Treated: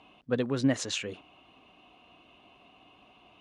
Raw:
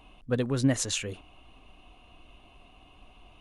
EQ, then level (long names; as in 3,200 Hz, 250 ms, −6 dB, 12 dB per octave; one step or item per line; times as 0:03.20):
band-pass filter 160–5,300 Hz
0.0 dB